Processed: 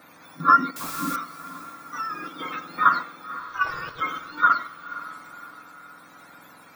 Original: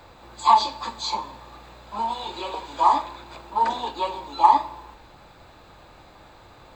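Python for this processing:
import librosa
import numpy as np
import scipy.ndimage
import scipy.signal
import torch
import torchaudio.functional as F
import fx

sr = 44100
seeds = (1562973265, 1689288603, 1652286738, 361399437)

p1 = fx.octave_mirror(x, sr, pivot_hz=1100.0)
p2 = scipy.signal.sosfilt(scipy.signal.butter(2, 200.0, 'highpass', fs=sr, output='sos'), p1)
p3 = fx.peak_eq(p2, sr, hz=370.0, db=-13.5, octaves=0.57)
p4 = fx.level_steps(p3, sr, step_db=19)
p5 = p3 + (p4 * librosa.db_to_amplitude(0.0))
p6 = fx.tremolo_shape(p5, sr, shape='triangle', hz=0.82, depth_pct=40)
p7 = fx.quant_dither(p6, sr, seeds[0], bits=6, dither='triangular', at=(0.76, 1.16))
p8 = fx.notch(p7, sr, hz=3000.0, q=9.2)
p9 = fx.ring_mod(p8, sr, carrier_hz=170.0, at=(3.39, 4.0), fade=0.02)
y = p9 + fx.echo_diffused(p9, sr, ms=527, feedback_pct=49, wet_db=-15.5, dry=0)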